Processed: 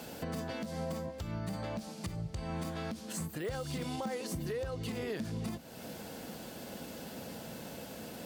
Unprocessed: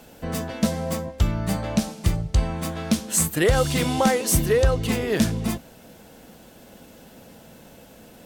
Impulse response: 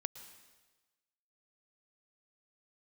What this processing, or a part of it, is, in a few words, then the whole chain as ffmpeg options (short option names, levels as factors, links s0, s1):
broadcast voice chain: -af "highpass=78,deesser=0.65,acompressor=threshold=0.0112:ratio=3,equalizer=f=4600:t=o:w=0.25:g=5,alimiter=level_in=2.24:limit=0.0631:level=0:latency=1:release=131,volume=0.447,volume=1.33"